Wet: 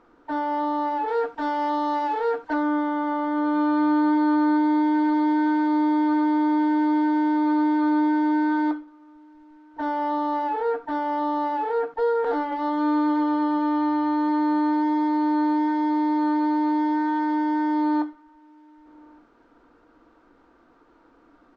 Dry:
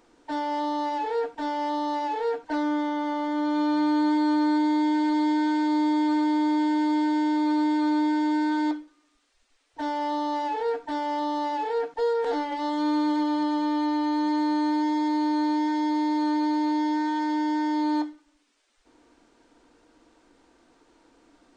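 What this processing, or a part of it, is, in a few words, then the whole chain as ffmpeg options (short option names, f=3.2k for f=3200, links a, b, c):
through cloth: -filter_complex "[0:a]lowpass=5.4k,highshelf=f=2.1k:g=-12.5,asettb=1/sr,asplit=3[a][b][c];[a]atrim=end=1.084[d];[b]atrim=start=1.08:end=2.54,asetpts=PTS-STARTPTS,afade=t=in:d=0.004:c=qsin,afade=t=out:st=1.456:d=0.004:c=qsin,highshelf=f=2.9k:g=9.5[e];[c]atrim=start=2.536[f];[d][e]acrossfade=d=0.004:c1=hsin:c2=qsin[g];[g][f]acrossfade=d=0.004:c1=qsin:c2=hsin,equalizer=f=1.3k:w=2.4:g=9.5,asplit=2[h][i];[i]adelay=1166,volume=-28dB,highshelf=f=4k:g=-26.2[j];[h][j]amix=inputs=2:normalize=0,volume=2.5dB"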